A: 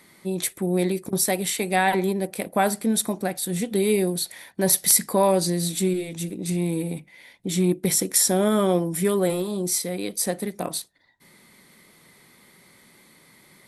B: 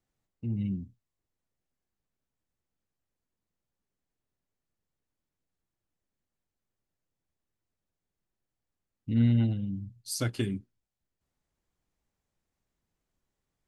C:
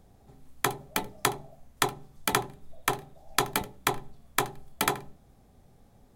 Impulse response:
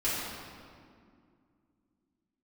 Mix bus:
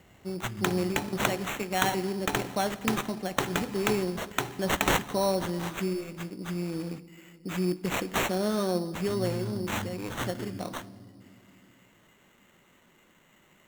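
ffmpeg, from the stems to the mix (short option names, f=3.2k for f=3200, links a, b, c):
-filter_complex "[0:a]volume=-8dB,asplit=2[a][b];[b]volume=-23dB[c];[1:a]acompressor=threshold=-32dB:ratio=2,volume=-7.5dB,asplit=2[d][e];[e]volume=-9.5dB[f];[2:a]acrossover=split=330|3000[g][h][i];[h]acompressor=threshold=-30dB:ratio=6[j];[g][j][i]amix=inputs=3:normalize=0,highpass=63,acontrast=52,volume=-6dB,asplit=2[k][l];[l]volume=-18.5dB[m];[3:a]atrim=start_sample=2205[n];[c][f][m]amix=inputs=3:normalize=0[o];[o][n]afir=irnorm=-1:irlink=0[p];[a][d][k][p]amix=inputs=4:normalize=0,acrusher=samples=9:mix=1:aa=0.000001"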